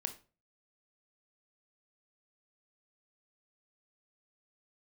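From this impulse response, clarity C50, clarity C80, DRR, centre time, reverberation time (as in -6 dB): 13.0 dB, 19.0 dB, 7.0 dB, 8 ms, 0.35 s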